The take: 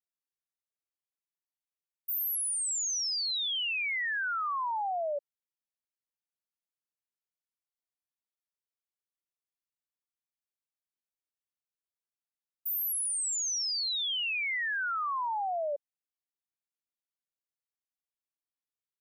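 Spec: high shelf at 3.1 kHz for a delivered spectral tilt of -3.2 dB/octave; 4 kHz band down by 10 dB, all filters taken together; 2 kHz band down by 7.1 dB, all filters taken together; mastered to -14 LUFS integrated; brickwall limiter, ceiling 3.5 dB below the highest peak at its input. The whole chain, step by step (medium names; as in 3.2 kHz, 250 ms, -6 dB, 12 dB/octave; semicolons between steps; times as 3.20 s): peaking EQ 2 kHz -5.5 dB; treble shelf 3.1 kHz -5.5 dB; peaking EQ 4 kHz -7 dB; trim +22.5 dB; peak limiter -10.5 dBFS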